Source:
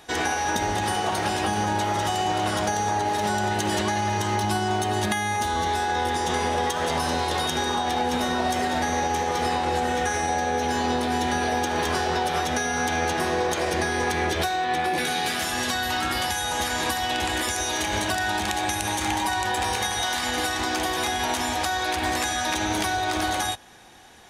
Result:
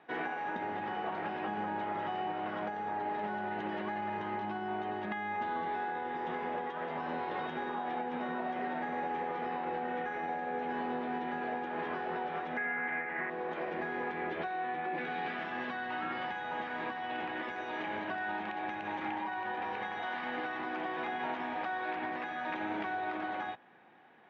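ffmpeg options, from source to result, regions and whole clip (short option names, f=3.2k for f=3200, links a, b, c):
-filter_complex "[0:a]asettb=1/sr,asplit=3[a][b][c];[a]atrim=end=12.574[d];[b]atrim=start=12.57:end=13.3,asetpts=PTS-STARTPTS,afade=t=in:d=0.004:c=qsin,afade=t=out:st=0.726:d=0.004:c=qsin,lowpass=f=2k:t=q:w=6.9,acrusher=bits=5:mode=log:mix=0:aa=0.000001[e];[c]atrim=start=13.296[f];[d][e]acrossfade=d=0.004:c1=hsin:c2=qsin[g];[g][f]acrossfade=d=0.004:c1=qsin:c2=hsin,lowpass=f=2.4k:w=0.5412,lowpass=f=2.4k:w=1.3066,alimiter=limit=-17dB:level=0:latency=1:release=470,highpass=f=150:w=0.5412,highpass=f=150:w=1.3066,volume=-9dB"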